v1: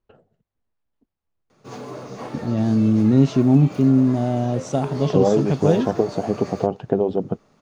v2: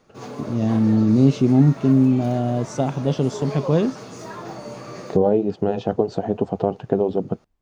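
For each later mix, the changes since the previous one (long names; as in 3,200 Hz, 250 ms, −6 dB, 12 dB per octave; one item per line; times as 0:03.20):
first voice: entry −1.95 s
background: entry −1.50 s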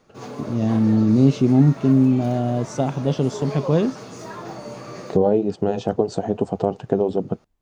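second voice: remove low-pass filter 4,100 Hz 12 dB per octave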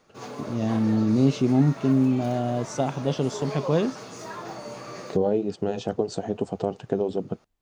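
second voice: add parametric band 900 Hz −5.5 dB 1.6 octaves
master: add low-shelf EQ 440 Hz −6.5 dB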